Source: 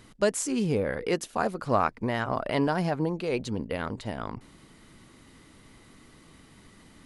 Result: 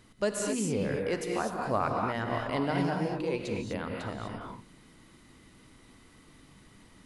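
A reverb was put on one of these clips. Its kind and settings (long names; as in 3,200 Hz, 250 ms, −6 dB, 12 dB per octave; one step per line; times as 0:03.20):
reverb whose tail is shaped and stops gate 270 ms rising, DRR 0.5 dB
level −5.5 dB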